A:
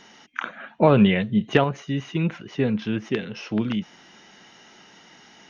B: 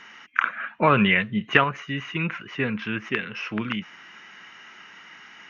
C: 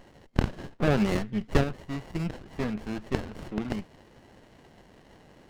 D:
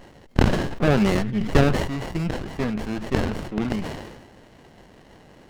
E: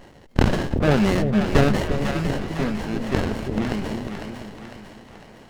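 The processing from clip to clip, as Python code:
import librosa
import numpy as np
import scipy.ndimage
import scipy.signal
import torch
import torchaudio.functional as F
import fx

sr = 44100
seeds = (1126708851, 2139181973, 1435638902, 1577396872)

y1 = fx.band_shelf(x, sr, hz=1700.0, db=13.0, octaves=1.7)
y1 = y1 * 10.0 ** (-5.0 / 20.0)
y2 = fx.running_max(y1, sr, window=33)
y2 = y2 * 10.0 ** (-3.5 / 20.0)
y3 = fx.sustainer(y2, sr, db_per_s=46.0)
y3 = y3 * 10.0 ** (4.5 / 20.0)
y4 = fx.echo_split(y3, sr, split_hz=620.0, low_ms=347, high_ms=502, feedback_pct=52, wet_db=-6)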